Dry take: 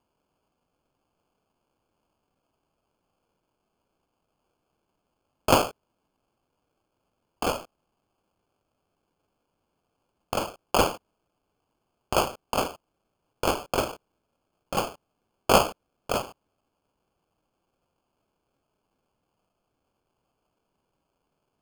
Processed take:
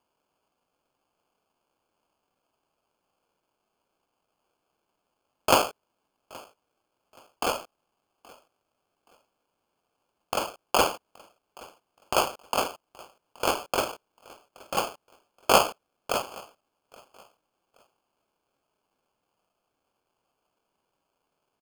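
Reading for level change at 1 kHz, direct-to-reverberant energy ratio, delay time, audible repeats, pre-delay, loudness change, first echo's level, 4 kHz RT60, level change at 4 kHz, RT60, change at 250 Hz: +0.5 dB, no reverb, 824 ms, 2, no reverb, 0.0 dB, -24.0 dB, no reverb, +1.5 dB, no reverb, -4.5 dB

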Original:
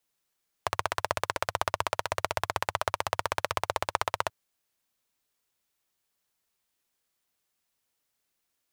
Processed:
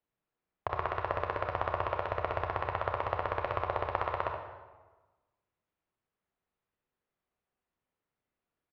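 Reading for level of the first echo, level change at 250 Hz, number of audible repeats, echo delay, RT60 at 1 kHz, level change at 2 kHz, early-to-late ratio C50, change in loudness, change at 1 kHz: -8.5 dB, +1.0 dB, 1, 74 ms, 1.2 s, -5.5 dB, 3.0 dB, -3.0 dB, -2.5 dB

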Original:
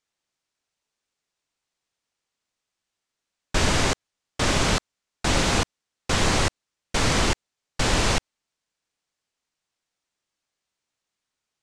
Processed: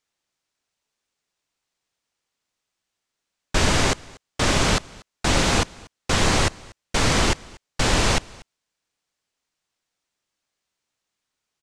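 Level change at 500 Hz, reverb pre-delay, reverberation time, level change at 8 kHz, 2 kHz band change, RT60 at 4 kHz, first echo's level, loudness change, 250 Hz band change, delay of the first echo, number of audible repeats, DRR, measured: +2.0 dB, no reverb, no reverb, +2.0 dB, +2.0 dB, no reverb, -24.0 dB, +2.0 dB, +2.0 dB, 238 ms, 1, no reverb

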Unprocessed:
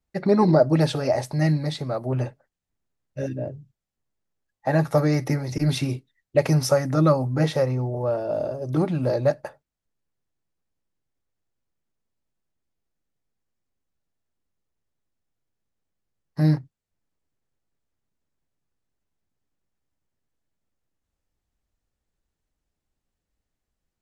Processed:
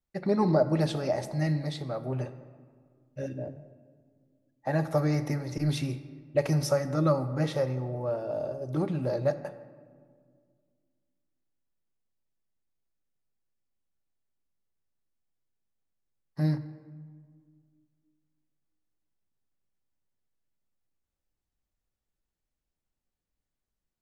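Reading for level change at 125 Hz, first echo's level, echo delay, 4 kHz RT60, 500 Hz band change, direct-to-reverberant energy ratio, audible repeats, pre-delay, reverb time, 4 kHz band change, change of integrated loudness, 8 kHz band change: -6.5 dB, no echo, no echo, 1.0 s, -6.0 dB, 10.5 dB, no echo, 3 ms, 1.9 s, -7.0 dB, -6.5 dB, -7.0 dB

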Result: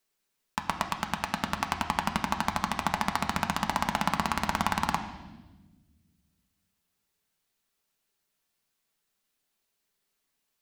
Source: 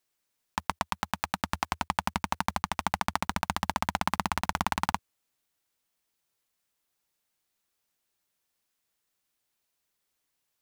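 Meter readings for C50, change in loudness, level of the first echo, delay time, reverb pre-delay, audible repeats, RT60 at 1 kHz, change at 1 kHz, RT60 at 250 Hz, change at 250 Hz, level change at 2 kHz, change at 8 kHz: 9.0 dB, +1.5 dB, no echo, no echo, 4 ms, no echo, 1.0 s, +1.0 dB, 2.0 s, +3.5 dB, +1.5 dB, +0.5 dB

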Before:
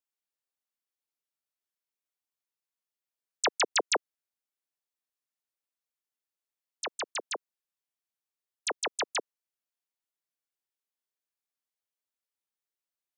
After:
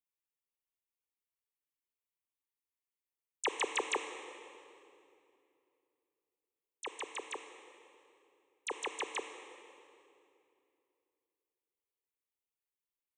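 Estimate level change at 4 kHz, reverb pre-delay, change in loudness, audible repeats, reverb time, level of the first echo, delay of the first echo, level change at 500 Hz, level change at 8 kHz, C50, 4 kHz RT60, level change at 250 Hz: -9.0 dB, 25 ms, -7.5 dB, no echo, 2.7 s, no echo, no echo, -5.5 dB, -9.0 dB, 7.5 dB, 2.2 s, -3.0 dB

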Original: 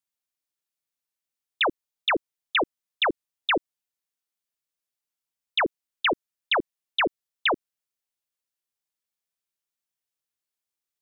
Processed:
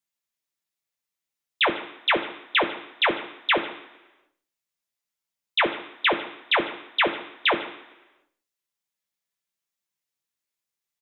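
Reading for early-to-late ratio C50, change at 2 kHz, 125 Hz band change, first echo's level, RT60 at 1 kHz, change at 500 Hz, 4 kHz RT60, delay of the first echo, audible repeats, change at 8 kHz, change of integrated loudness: 10.5 dB, +3.0 dB, +3.0 dB, -19.0 dB, 1.0 s, +1.5 dB, 0.95 s, 151 ms, 1, no reading, +2.5 dB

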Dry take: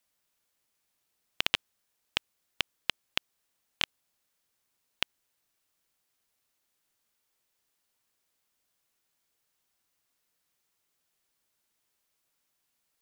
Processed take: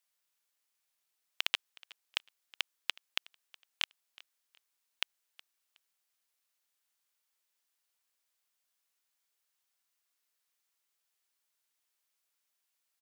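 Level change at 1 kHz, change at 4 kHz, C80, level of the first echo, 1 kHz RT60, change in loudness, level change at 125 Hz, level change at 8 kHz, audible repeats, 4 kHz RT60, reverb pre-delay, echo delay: -6.5 dB, -4.0 dB, no reverb, -23.0 dB, no reverb, -4.0 dB, under -20 dB, -3.5 dB, 2, no reverb, no reverb, 368 ms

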